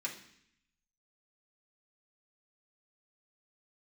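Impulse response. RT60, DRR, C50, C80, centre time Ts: 0.65 s, -4.5 dB, 9.0 dB, 12.5 dB, 19 ms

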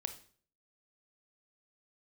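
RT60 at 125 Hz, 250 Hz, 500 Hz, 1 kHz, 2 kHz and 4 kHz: 0.60 s, 0.55 s, 0.50 s, 0.45 s, 0.45 s, 0.45 s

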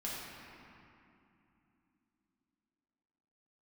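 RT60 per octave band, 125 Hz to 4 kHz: 3.5 s, 4.5 s, 2.9 s, 2.8 s, 2.5 s, 1.7 s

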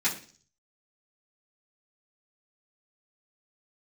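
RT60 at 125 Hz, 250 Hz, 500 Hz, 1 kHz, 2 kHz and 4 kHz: 0.70 s, 0.55 s, 0.45 s, 0.40 s, 0.45 s, 0.55 s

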